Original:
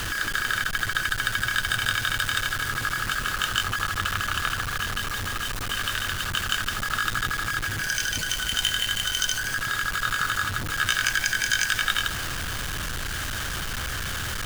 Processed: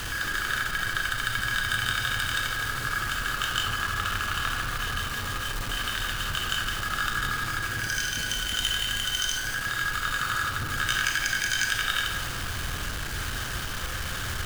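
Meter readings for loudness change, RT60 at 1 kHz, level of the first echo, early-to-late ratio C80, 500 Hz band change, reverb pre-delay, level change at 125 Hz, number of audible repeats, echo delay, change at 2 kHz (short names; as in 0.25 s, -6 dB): -2.0 dB, 1.4 s, none, 5.0 dB, -1.0 dB, 28 ms, -1.0 dB, none, none, -2.0 dB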